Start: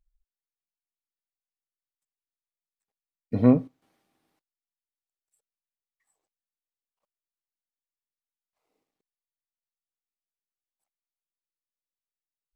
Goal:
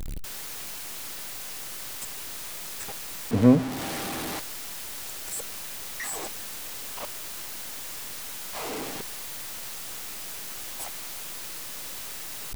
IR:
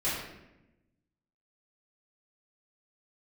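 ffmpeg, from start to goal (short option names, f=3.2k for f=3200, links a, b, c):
-filter_complex "[0:a]aeval=exprs='val(0)+0.5*0.0501*sgn(val(0))':c=same,asplit=2[a][b];[1:a]atrim=start_sample=2205[c];[b][c]afir=irnorm=-1:irlink=0,volume=-32dB[d];[a][d]amix=inputs=2:normalize=0"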